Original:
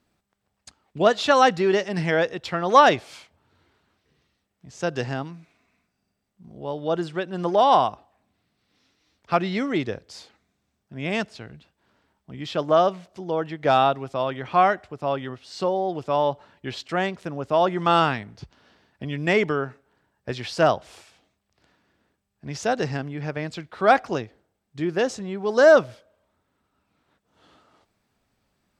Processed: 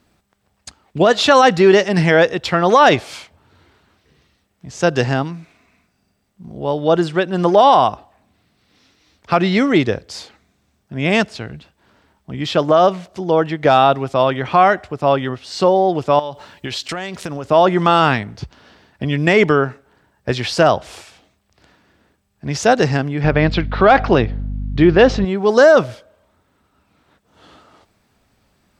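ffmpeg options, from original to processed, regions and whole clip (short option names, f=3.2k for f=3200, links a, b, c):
-filter_complex "[0:a]asettb=1/sr,asplit=3[a][b][c];[a]atrim=end=16.194[d];[b]atrim=start=16.19:end=17.45,asetpts=PTS-STARTPTS,afade=t=in:d=0.004:c=qsin,afade=t=out:st=1.256:d=0.004:c=qsin,highshelf=f=2.7k:g=10.5,acompressor=threshold=-31dB:ratio=16:attack=3.2:release=140:knee=1:detection=peak[e];[c]atrim=start=17.446[f];[d][e]acrossfade=d=0.004:c1=hsin:c2=qsin[g];[g][f]acrossfade=d=0.004:c1=qsin:c2=hsin,asettb=1/sr,asplit=3[h][i][j];[h]atrim=end=23.244[k];[i]atrim=start=23.24:end=25.25,asetpts=PTS-STARTPTS,afade=t=in:d=0.004:c=qsin,afade=t=out:st=2.006:d=0.004:c=qsin,lowpass=f=4.3k:w=0.5412,lowpass=f=4.3k:w=1.3066,acontrast=37,aeval=exprs='val(0)+0.02*(sin(2*PI*50*n/s)+sin(2*PI*2*50*n/s)/2+sin(2*PI*3*50*n/s)/3+sin(2*PI*4*50*n/s)/4+sin(2*PI*5*50*n/s)/5)':c=same[l];[j]atrim=start=25.246[m];[k][l]acrossfade=d=0.004:c1=hsin:c2=qsin[n];[n][m]acrossfade=d=0.004:c1=qsin:c2=hsin,equalizer=f=67:w=1.5:g=3,alimiter=level_in=11.5dB:limit=-1dB:release=50:level=0:latency=1,volume=-1dB"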